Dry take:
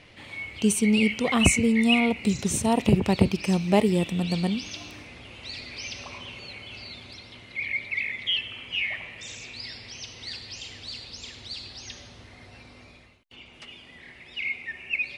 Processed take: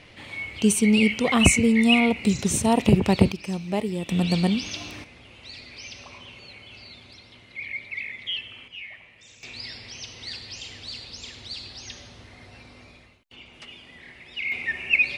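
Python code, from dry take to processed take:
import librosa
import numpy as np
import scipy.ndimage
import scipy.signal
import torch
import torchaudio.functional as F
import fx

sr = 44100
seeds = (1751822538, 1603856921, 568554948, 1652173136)

y = fx.gain(x, sr, db=fx.steps((0.0, 2.5), (3.32, -6.0), (4.09, 4.0), (5.04, -4.0), (8.68, -11.0), (9.43, 1.0), (14.52, 8.0)))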